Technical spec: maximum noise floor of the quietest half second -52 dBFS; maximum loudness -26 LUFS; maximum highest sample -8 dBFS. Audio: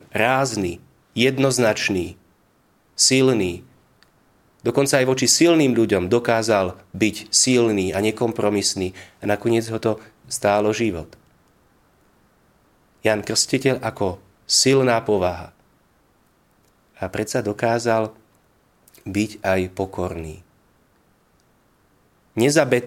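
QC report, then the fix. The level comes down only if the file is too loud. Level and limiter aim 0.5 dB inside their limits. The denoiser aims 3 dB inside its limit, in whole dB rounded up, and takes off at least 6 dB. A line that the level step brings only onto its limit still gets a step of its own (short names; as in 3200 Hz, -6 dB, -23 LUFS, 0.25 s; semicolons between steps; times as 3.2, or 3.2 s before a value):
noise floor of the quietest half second -60 dBFS: OK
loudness -20.0 LUFS: fail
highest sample -2.0 dBFS: fail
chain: gain -6.5 dB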